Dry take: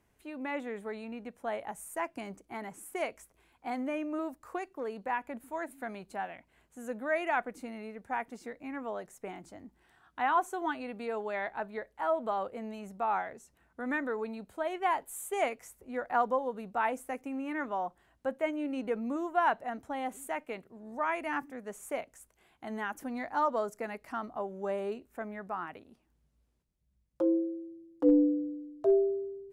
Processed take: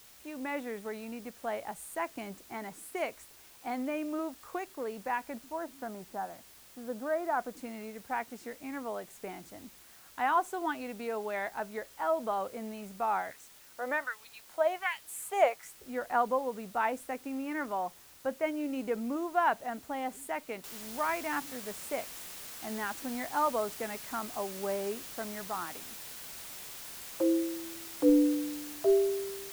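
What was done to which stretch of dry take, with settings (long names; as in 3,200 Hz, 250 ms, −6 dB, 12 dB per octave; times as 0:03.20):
0:05.39–0:07.57: low-pass filter 1,400 Hz 24 dB per octave
0:13.31–0:15.77: auto-filter high-pass sine 1.3 Hz 520–3,700 Hz
0:20.64: noise floor change −56 dB −45 dB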